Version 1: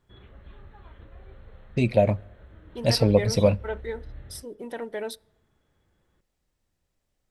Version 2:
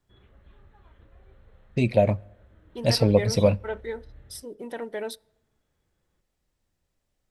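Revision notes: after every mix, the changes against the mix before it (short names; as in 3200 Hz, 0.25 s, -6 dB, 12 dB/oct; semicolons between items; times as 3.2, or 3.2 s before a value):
background -7.0 dB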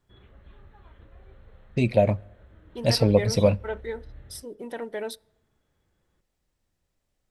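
background +3.5 dB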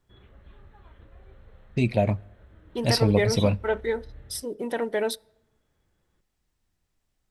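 first voice: add bell 540 Hz -7 dB 0.43 oct; second voice +6.5 dB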